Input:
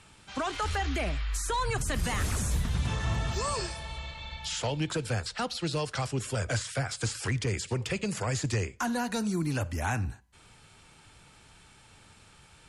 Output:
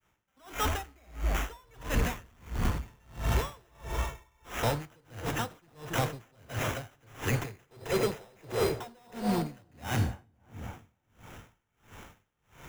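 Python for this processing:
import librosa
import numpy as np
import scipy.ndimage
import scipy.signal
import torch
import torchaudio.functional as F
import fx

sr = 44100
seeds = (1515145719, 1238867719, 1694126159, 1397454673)

y = fx.fade_in_head(x, sr, length_s=0.59)
y = fx.band_shelf(y, sr, hz=570.0, db=14.5, octaves=1.7, at=(7.65, 9.14))
y = fx.sample_hold(y, sr, seeds[0], rate_hz=4500.0, jitter_pct=0)
y = 10.0 ** (-30.0 / 20.0) * np.tanh(y / 10.0 ** (-30.0 / 20.0))
y = fx.echo_wet_lowpass(y, sr, ms=276, feedback_pct=60, hz=1200.0, wet_db=-8.0)
y = fx.rev_gated(y, sr, seeds[1], gate_ms=460, shape='falling', drr_db=8.5)
y = y * 10.0 ** (-35 * (0.5 - 0.5 * np.cos(2.0 * np.pi * 1.5 * np.arange(len(y)) / sr)) / 20.0)
y = y * 10.0 ** (7.0 / 20.0)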